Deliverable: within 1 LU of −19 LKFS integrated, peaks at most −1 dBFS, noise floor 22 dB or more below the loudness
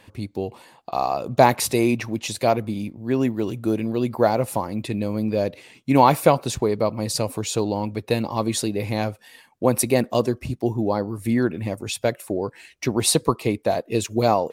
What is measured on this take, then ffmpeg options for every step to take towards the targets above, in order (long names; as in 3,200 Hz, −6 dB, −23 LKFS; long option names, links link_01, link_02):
integrated loudness −23.0 LKFS; sample peak −1.5 dBFS; target loudness −19.0 LKFS
→ -af "volume=4dB,alimiter=limit=-1dB:level=0:latency=1"